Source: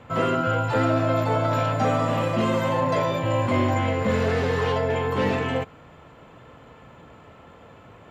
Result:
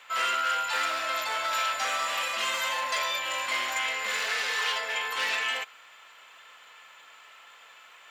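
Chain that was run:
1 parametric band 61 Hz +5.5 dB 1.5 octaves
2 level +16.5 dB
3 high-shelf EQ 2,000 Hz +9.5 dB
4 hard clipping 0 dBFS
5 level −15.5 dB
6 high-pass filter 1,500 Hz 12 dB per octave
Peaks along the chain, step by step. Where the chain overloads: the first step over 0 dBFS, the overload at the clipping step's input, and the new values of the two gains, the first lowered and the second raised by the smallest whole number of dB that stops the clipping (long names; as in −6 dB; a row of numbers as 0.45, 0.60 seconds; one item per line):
−10.0, +6.5, +7.5, 0.0, −15.5, −15.5 dBFS
step 2, 7.5 dB
step 2 +8.5 dB, step 5 −7.5 dB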